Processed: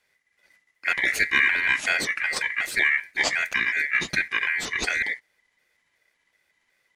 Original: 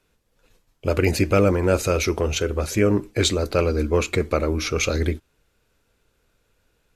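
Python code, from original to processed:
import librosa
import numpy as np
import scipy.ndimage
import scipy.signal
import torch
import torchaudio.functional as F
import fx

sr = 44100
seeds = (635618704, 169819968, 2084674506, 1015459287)

y = fx.pitch_trill(x, sr, semitones=-6.0, every_ms=186)
y = y * np.sin(2.0 * np.pi * 2000.0 * np.arange(len(y)) / sr)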